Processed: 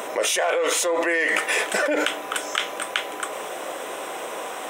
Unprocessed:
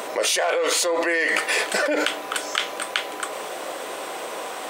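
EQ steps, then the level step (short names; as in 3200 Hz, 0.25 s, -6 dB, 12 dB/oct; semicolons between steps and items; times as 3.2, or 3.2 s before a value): bell 4500 Hz -14.5 dB 0.2 oct; 0.0 dB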